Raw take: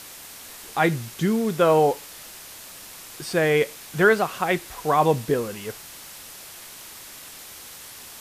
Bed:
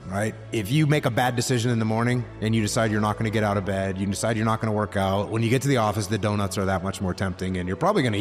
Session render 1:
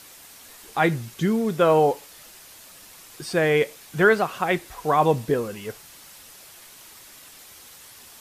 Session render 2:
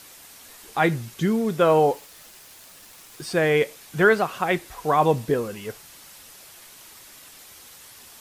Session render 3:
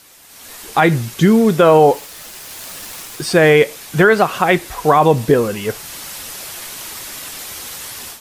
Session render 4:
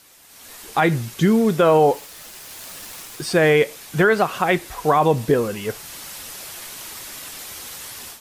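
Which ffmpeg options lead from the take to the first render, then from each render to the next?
-af "afftdn=nr=6:nf=-42"
-filter_complex "[0:a]asettb=1/sr,asplit=3[a][b][c];[a]atrim=end=1.604[d];[b]atrim=start=1.6:end=3.31,asetpts=PTS-STARTPTS,afade=t=in:d=0.004:c=qsin,afade=t=out:st=1.706:d=0.004:c=qsin,aeval=exprs='val(0)*gte(abs(val(0)),0.00422)':c=same[e];[c]atrim=start=3.306[f];[d][e]acrossfade=d=0.004:c1=hsin:c2=qsin[g];[g][f]acrossfade=d=0.004:c1=qsin:c2=hsin"
-af "alimiter=limit=-13dB:level=0:latency=1:release=129,dynaudnorm=f=270:g=3:m=16dB"
-af "volume=-5dB"

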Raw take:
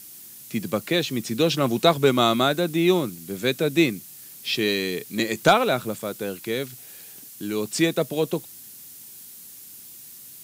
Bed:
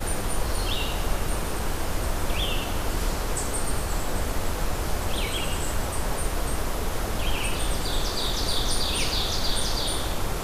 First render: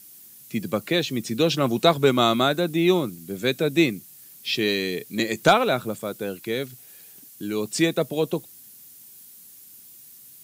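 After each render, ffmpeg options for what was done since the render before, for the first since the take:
-af "afftdn=nr=6:nf=-44"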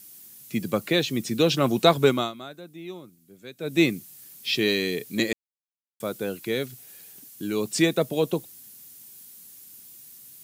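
-filter_complex "[0:a]asplit=5[a][b][c][d][e];[a]atrim=end=2.32,asetpts=PTS-STARTPTS,afade=t=out:st=2.05:d=0.27:silence=0.112202[f];[b]atrim=start=2.32:end=3.57,asetpts=PTS-STARTPTS,volume=-19dB[g];[c]atrim=start=3.57:end=5.33,asetpts=PTS-STARTPTS,afade=t=in:d=0.27:silence=0.112202,afade=t=out:st=1.756:d=0.004:c=hsin[h];[d]atrim=start=5.33:end=6,asetpts=PTS-STARTPTS,volume=0[i];[e]atrim=start=6,asetpts=PTS-STARTPTS,afade=t=in:d=0.004:c=hsin[j];[f][g][h][i][j]concat=n=5:v=0:a=1"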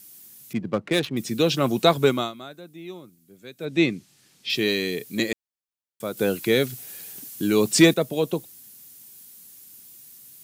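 -filter_complex "[0:a]asettb=1/sr,asplit=3[a][b][c];[a]atrim=end=0.534[d];[b]atrim=start=0.53:end=1.17,asetpts=PTS-STARTPTS,afade=t=in:d=0.004:c=qsin,afade=t=out:st=0.636:d=0.004:c=qsin,adynamicsmooth=sensitivity=3:basefreq=970[e];[c]atrim=start=1.166[f];[d][e]acrossfade=d=0.004:c1=hsin:c2=qsin[g];[g][f]acrossfade=d=0.004:c1=qsin:c2=hsin,asettb=1/sr,asplit=3[h][i][j];[h]atrim=end=3.654[k];[i]atrim=start=3.65:end=4.5,asetpts=PTS-STARTPTS,afade=t=in:d=0.004:c=qsin,afade=t=out:st=0.846:d=0.004:c=qsin,lowpass=5.3k[l];[j]atrim=start=4.496[m];[k][l]acrossfade=d=0.004:c1=hsin:c2=qsin[n];[n][m]acrossfade=d=0.004:c1=qsin:c2=hsin,asettb=1/sr,asplit=3[o][p][q];[o]atrim=end=6.174[r];[p]atrim=start=6.17:end=7.94,asetpts=PTS-STARTPTS,afade=t=in:d=0.004:c=qsin,afade=t=out:st=1.766:d=0.004:c=qsin,acontrast=87[s];[q]atrim=start=7.936[t];[r][s]acrossfade=d=0.004:c1=hsin:c2=qsin[u];[u][t]acrossfade=d=0.004:c1=qsin:c2=hsin"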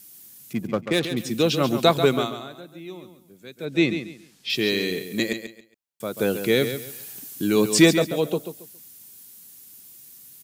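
-af "aecho=1:1:138|276|414:0.335|0.0837|0.0209"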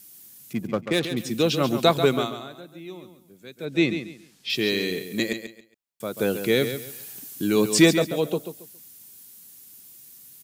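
-af "volume=-1dB"

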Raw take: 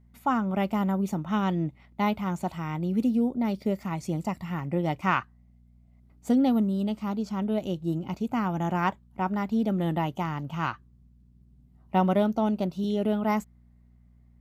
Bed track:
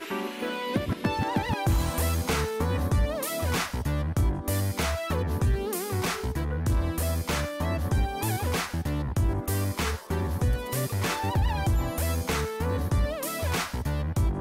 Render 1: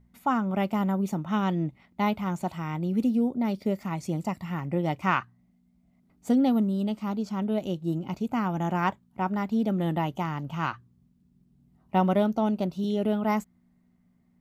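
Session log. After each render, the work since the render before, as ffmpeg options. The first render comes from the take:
-af "bandreject=f=60:t=h:w=4,bandreject=f=120:t=h:w=4"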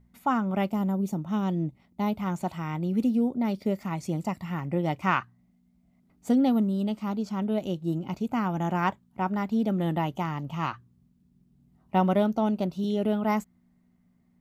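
-filter_complex "[0:a]asettb=1/sr,asplit=3[a][b][c];[a]atrim=end=0.694[d];[b]atrim=start=0.69:end=2.2,asetpts=PTS-STARTPTS,afade=t=in:d=0.004:c=qsin,afade=t=out:st=1.506:d=0.004:c=qsin,equalizer=f=1.8k:t=o:w=2.2:g=-9[e];[c]atrim=start=2.196[f];[d][e]acrossfade=d=0.004:c1=hsin:c2=qsin[g];[g][f]acrossfade=d=0.004:c1=qsin:c2=hsin,asettb=1/sr,asplit=3[h][i][j];[h]atrim=end=10.314[k];[i]atrim=start=10.31:end=10.71,asetpts=PTS-STARTPTS,afade=t=in:d=0.004:c=qsin,afade=t=out:st=0.396:d=0.004:c=qsin,bandreject=f=1.5k:w=6.6[l];[j]atrim=start=10.706[m];[k][l]acrossfade=d=0.004:c1=hsin:c2=qsin[n];[n][m]acrossfade=d=0.004:c1=qsin:c2=hsin"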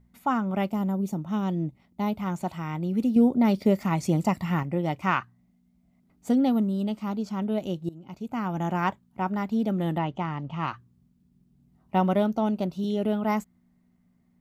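-filter_complex "[0:a]asettb=1/sr,asplit=3[a][b][c];[a]atrim=end=3.164[d];[b]atrim=start=3.16:end=4.63,asetpts=PTS-STARTPTS,afade=t=in:d=0.004:c=qsin,afade=t=out:st=1.466:d=0.004:c=qsin,acontrast=53[e];[c]atrim=start=4.626[f];[d][e]acrossfade=d=0.004:c1=hsin:c2=qsin[g];[g][f]acrossfade=d=0.004:c1=qsin:c2=hsin,asettb=1/sr,asplit=3[h][i][j];[h]atrim=end=9.984[k];[i]atrim=start=9.98:end=10.68,asetpts=PTS-STARTPTS,afade=t=in:d=0.004:c=qsin,afade=t=out:st=0.696:d=0.004:c=qsin,lowpass=3.9k[l];[j]atrim=start=10.676[m];[k][l]acrossfade=d=0.004:c1=hsin:c2=qsin[n];[n][m]acrossfade=d=0.004:c1=qsin:c2=hsin,asplit=2[o][p];[o]atrim=end=7.89,asetpts=PTS-STARTPTS,afade=t=out:st=7.886:d=0.004:c=hsin:silence=0.0944061[q];[p]atrim=start=7.89,asetpts=PTS-STARTPTS,afade=t=in:d=0.7:silence=0.0944061[r];[q][r]concat=n=2:v=0:a=1"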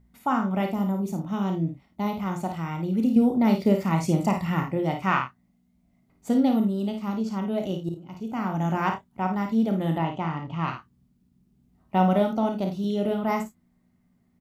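-filter_complex "[0:a]asplit=2[a][b];[b]adelay=31,volume=-9dB[c];[a][c]amix=inputs=2:normalize=0,aecho=1:1:54|77:0.473|0.133"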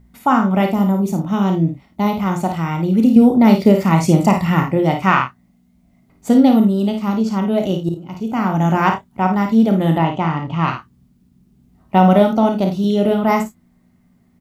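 -af "volume=10dB,alimiter=limit=-1dB:level=0:latency=1"

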